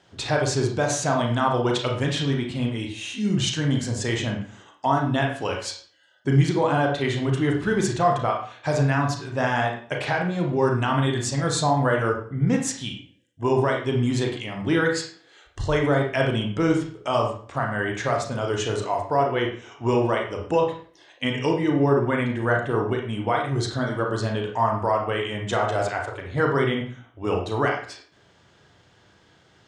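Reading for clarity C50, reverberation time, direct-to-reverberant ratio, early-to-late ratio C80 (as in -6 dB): 5.5 dB, 0.45 s, 1.0 dB, 10.0 dB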